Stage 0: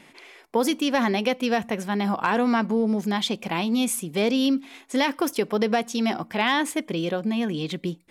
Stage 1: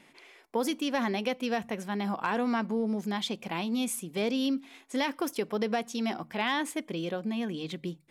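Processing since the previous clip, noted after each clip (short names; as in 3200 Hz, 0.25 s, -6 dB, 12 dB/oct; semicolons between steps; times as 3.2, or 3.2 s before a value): notches 50/100/150 Hz; gain -7 dB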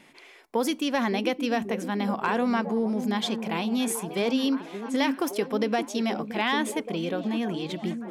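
delay with a stepping band-pass 0.571 s, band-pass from 280 Hz, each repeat 0.7 oct, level -5.5 dB; gain +3.5 dB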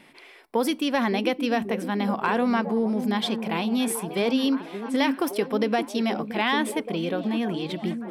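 bell 6700 Hz -10.5 dB 0.3 oct; gain +2 dB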